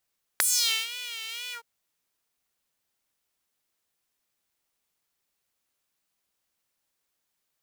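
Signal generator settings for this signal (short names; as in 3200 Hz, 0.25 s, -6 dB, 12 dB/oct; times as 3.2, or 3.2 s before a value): synth patch with vibrato A#4, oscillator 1 square, oscillator 2 saw, interval +12 st, oscillator 2 level -5 dB, sub -22.5 dB, noise -12 dB, filter highpass, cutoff 710 Hz, filter envelope 4 oct, filter decay 0.32 s, filter sustain 50%, attack 1.2 ms, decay 0.47 s, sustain -19 dB, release 0.10 s, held 1.12 s, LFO 2.1 Hz, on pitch 91 cents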